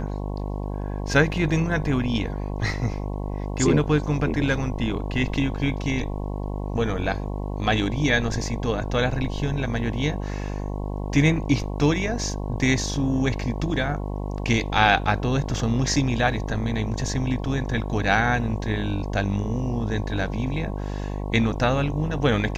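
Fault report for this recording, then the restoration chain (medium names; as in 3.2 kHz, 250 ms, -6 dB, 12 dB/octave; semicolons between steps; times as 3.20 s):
buzz 50 Hz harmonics 22 -29 dBFS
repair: de-hum 50 Hz, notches 22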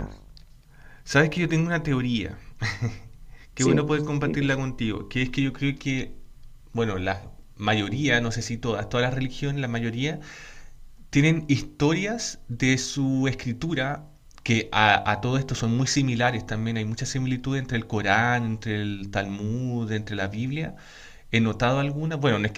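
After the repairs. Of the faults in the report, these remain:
nothing left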